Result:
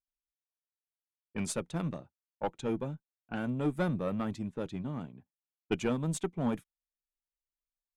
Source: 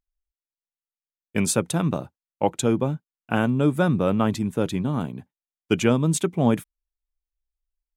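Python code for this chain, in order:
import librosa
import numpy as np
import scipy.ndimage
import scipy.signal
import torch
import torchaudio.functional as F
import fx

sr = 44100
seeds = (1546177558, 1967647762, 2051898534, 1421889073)

y = fx.diode_clip(x, sr, knee_db=-17.0)
y = fx.env_lowpass(y, sr, base_hz=1100.0, full_db=-19.5)
y = fx.upward_expand(y, sr, threshold_db=-39.0, expansion=1.5)
y = F.gain(torch.from_numpy(y), -7.0).numpy()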